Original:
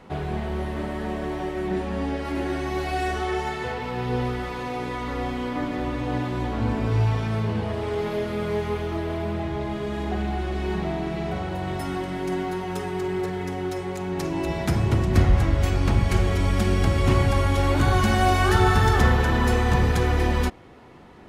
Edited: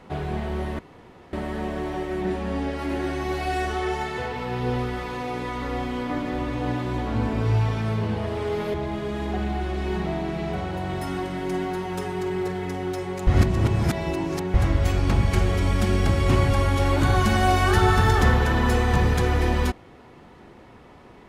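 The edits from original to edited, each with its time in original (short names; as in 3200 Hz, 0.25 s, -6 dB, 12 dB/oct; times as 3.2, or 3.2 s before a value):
0.79 insert room tone 0.54 s
8.2–9.52 cut
14.05–15.32 reverse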